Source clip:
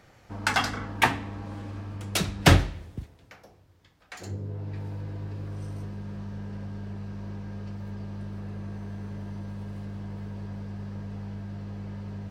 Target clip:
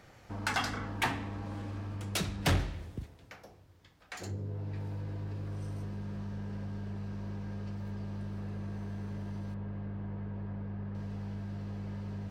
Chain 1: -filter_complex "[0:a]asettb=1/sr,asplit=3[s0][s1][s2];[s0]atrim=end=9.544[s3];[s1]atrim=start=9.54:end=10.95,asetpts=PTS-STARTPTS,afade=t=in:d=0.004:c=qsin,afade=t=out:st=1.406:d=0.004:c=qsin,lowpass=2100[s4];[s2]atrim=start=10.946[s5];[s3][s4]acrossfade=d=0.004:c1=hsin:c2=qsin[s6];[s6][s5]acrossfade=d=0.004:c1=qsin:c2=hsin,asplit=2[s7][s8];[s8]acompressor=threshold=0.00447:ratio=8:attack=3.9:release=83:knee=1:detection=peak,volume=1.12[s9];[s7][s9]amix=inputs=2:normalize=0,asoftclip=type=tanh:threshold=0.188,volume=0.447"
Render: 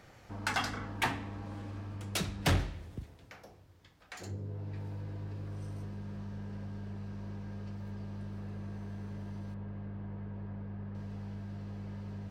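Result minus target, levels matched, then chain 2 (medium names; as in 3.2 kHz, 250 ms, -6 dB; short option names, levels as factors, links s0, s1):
compression: peak gain reduction +8.5 dB
-filter_complex "[0:a]asettb=1/sr,asplit=3[s0][s1][s2];[s0]atrim=end=9.544[s3];[s1]atrim=start=9.54:end=10.95,asetpts=PTS-STARTPTS,afade=t=in:d=0.004:c=qsin,afade=t=out:st=1.406:d=0.004:c=qsin,lowpass=2100[s4];[s2]atrim=start=10.946[s5];[s3][s4]acrossfade=d=0.004:c1=hsin:c2=qsin[s6];[s6][s5]acrossfade=d=0.004:c1=qsin:c2=hsin,asplit=2[s7][s8];[s8]acompressor=threshold=0.0141:ratio=8:attack=3.9:release=83:knee=1:detection=peak,volume=1.12[s9];[s7][s9]amix=inputs=2:normalize=0,asoftclip=type=tanh:threshold=0.188,volume=0.447"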